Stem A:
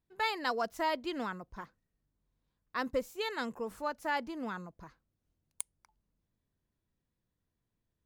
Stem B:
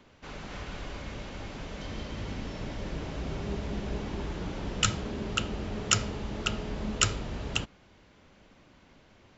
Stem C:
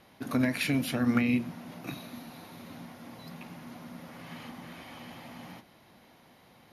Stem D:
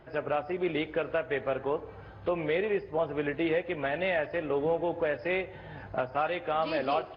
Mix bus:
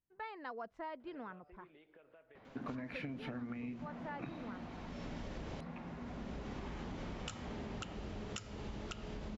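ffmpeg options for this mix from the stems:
ffmpeg -i stem1.wav -i stem2.wav -i stem3.wav -i stem4.wav -filter_complex "[0:a]volume=-9.5dB,asplit=2[link_01][link_02];[1:a]acompressor=threshold=-34dB:ratio=6,adelay=2450,volume=-4dB[link_03];[2:a]adelay=2350,volume=-1.5dB[link_04];[3:a]highpass=150,alimiter=level_in=0.5dB:limit=-24dB:level=0:latency=1:release=68,volume=-0.5dB,acompressor=threshold=-43dB:ratio=6,adelay=1000,volume=-17dB[link_05];[link_02]apad=whole_len=521278[link_06];[link_03][link_06]sidechaincompress=threshold=-58dB:ratio=8:attack=9.2:release=559[link_07];[link_01][link_04]amix=inputs=2:normalize=0,lowpass=2000,acompressor=threshold=-32dB:ratio=6,volume=0dB[link_08];[link_07][link_05][link_08]amix=inputs=3:normalize=0,acompressor=threshold=-40dB:ratio=6" out.wav

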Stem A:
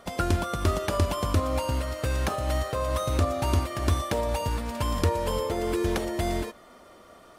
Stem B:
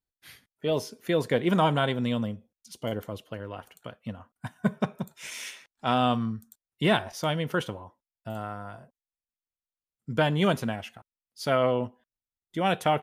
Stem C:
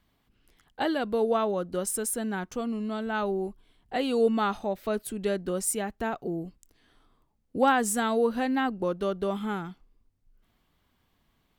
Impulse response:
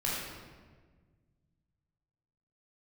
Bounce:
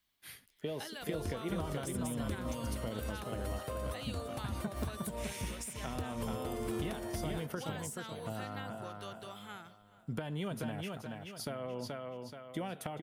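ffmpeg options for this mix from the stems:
-filter_complex "[0:a]adelay=950,volume=-8.5dB[link_01];[1:a]acompressor=threshold=-30dB:ratio=6,volume=-2.5dB,asplit=2[link_02][link_03];[link_03]volume=-6.5dB[link_04];[2:a]acrossover=split=590|4500[link_05][link_06][link_07];[link_05]acompressor=threshold=-33dB:ratio=4[link_08];[link_06]acompressor=threshold=-29dB:ratio=4[link_09];[link_07]acompressor=threshold=-36dB:ratio=4[link_10];[link_08][link_09][link_10]amix=inputs=3:normalize=0,tiltshelf=frequency=1400:gain=-9.5,volume=-11dB,asplit=3[link_11][link_12][link_13];[link_12]volume=-21.5dB[link_14];[link_13]apad=whole_len=367677[link_15];[link_01][link_15]sidechaincompress=threshold=-51dB:ratio=8:attack=16:release=118[link_16];[link_16][link_02]amix=inputs=2:normalize=0,aexciter=amount=1.8:drive=6.8:freq=8600,acompressor=threshold=-33dB:ratio=6,volume=0dB[link_17];[link_04][link_14]amix=inputs=2:normalize=0,aecho=0:1:428|856|1284|1712|2140|2568:1|0.4|0.16|0.064|0.0256|0.0102[link_18];[link_11][link_17][link_18]amix=inputs=3:normalize=0,acrossover=split=480[link_19][link_20];[link_20]acompressor=threshold=-41dB:ratio=6[link_21];[link_19][link_21]amix=inputs=2:normalize=0"

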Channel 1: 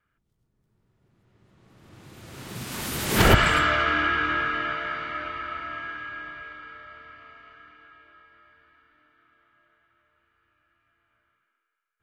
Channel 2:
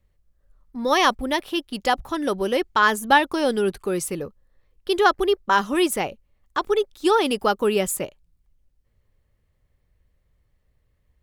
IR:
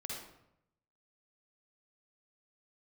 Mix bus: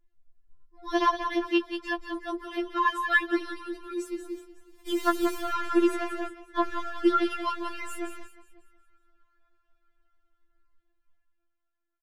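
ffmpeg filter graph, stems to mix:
-filter_complex "[0:a]aeval=exprs='if(lt(val(0),0),0.447*val(0),val(0))':channel_layout=same,acompressor=threshold=-30dB:ratio=3,asoftclip=type=tanh:threshold=-29dB,adelay=2200,volume=-3dB[link_01];[1:a]lowpass=frequency=2700:poles=1,aecho=1:1:5.8:0.59,volume=-9dB,asplit=3[link_02][link_03][link_04];[link_03]volume=-8.5dB[link_05];[link_04]apad=whole_len=627131[link_06];[link_01][link_06]sidechaingate=range=-20dB:threshold=-57dB:ratio=16:detection=peak[link_07];[link_05]aecho=0:1:183|366|549|732|915|1098:1|0.41|0.168|0.0689|0.0283|0.0116[link_08];[link_07][link_02][link_08]amix=inputs=3:normalize=0,aphaser=in_gain=1:out_gain=1:delay=4:decay=0.42:speed=0.7:type=triangular,bandreject=frequency=60:width_type=h:width=6,bandreject=frequency=120:width_type=h:width=6,bandreject=frequency=180:width_type=h:width=6,bandreject=frequency=240:width_type=h:width=6,bandreject=frequency=300:width_type=h:width=6,bandreject=frequency=360:width_type=h:width=6,afftfilt=real='re*4*eq(mod(b,16),0)':imag='im*4*eq(mod(b,16),0)':win_size=2048:overlap=0.75"

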